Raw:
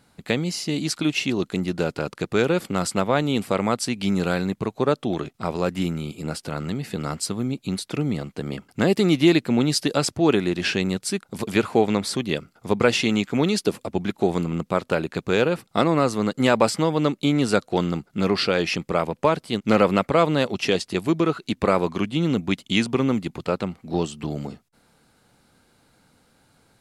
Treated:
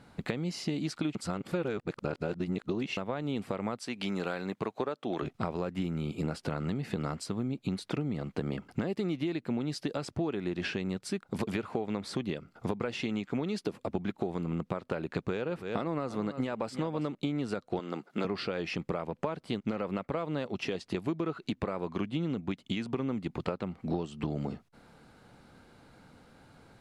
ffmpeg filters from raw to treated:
-filter_complex "[0:a]asplit=3[s0][s1][s2];[s0]afade=t=out:st=3.78:d=0.02[s3];[s1]highpass=f=500:p=1,afade=t=in:st=3.78:d=0.02,afade=t=out:st=5.21:d=0.02[s4];[s2]afade=t=in:st=5.21:d=0.02[s5];[s3][s4][s5]amix=inputs=3:normalize=0,asettb=1/sr,asplit=3[s6][s7][s8];[s6]atrim=end=15.104[s9];[s7]atrim=start=15.1:end=17.15,asetpts=PTS-STARTPTS,afade=t=in:d=0.004:c=qsin,afade=t=out:st=2.046:d=0.004:c=qsin,aecho=1:1:328:0.15,atrim=end_sample=90405[s10];[s8]atrim=start=17.146[s11];[s9][s10]acrossfade=d=0.004:c1=hsin:c2=qsin[s12];[s12][s11]acrossfade=d=0.004:c1=qsin:c2=hsin,asettb=1/sr,asplit=3[s13][s14][s15];[s13]atrim=end=17.794[s16];[s14]atrim=start=17.79:end=18.25,asetpts=PTS-STARTPTS,afade=t=in:d=0.004:c=qsin,afade=t=out:st=0.456:d=0.004:c=qsin,highpass=340[s17];[s15]atrim=start=18.246[s18];[s16][s17]acrossfade=d=0.004:c1=hsin:c2=qsin[s19];[s19][s18]acrossfade=d=0.004:c1=qsin:c2=hsin,asplit=3[s20][s21][s22];[s20]atrim=end=1.152[s23];[s21]atrim=start=1.148:end=2.972,asetpts=PTS-STARTPTS,areverse[s24];[s22]atrim=start=2.968[s25];[s23][s24]acrossfade=d=0.004:c1=hsin:c2=hsin[s26];[s26][s25]acrossfade=d=0.004:c1=hsin:c2=hsin,alimiter=limit=0.266:level=0:latency=1:release=333,acompressor=threshold=0.0224:ratio=12,lowpass=f=2200:p=1,volume=1.68"

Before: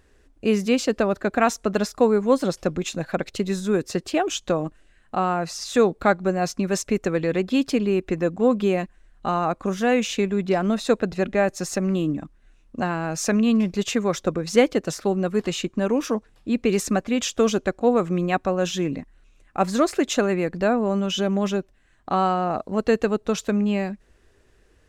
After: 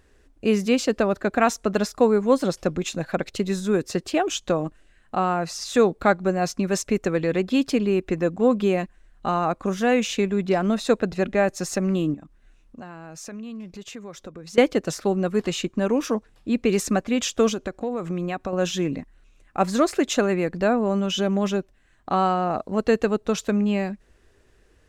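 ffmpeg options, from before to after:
-filter_complex "[0:a]asettb=1/sr,asplit=3[s0][s1][s2];[s0]atrim=end=12.144[s3];[s1]atrim=start=12.14:end=14.58,asetpts=PTS-STARTPTS,afade=t=in:d=0.004:c=qsin,afade=t=out:st=2.436:d=0.004:c=qsin,acompressor=threshold=0.00794:ratio=2.5:attack=3.2:release=140:knee=1:detection=peak[s4];[s2]atrim=start=14.576[s5];[s3][s4]acrossfade=d=0.004:c1=hsin:c2=qsin[s6];[s6][s5]acrossfade=d=0.004:c1=qsin:c2=hsin,asettb=1/sr,asplit=3[s7][s8][s9];[s7]atrim=end=17.484[s10];[s8]atrim=start=17.48:end=18.53,asetpts=PTS-STARTPTS,afade=t=in:d=0.004:c=qsin,afade=t=out:st=1.046:d=0.004:c=qsin,acompressor=threshold=0.0708:ratio=6:attack=3.2:release=140:knee=1:detection=peak[s11];[s9]atrim=start=18.526[s12];[s10][s11]acrossfade=d=0.004:c1=hsin:c2=qsin[s13];[s13][s12]acrossfade=d=0.004:c1=qsin:c2=hsin"

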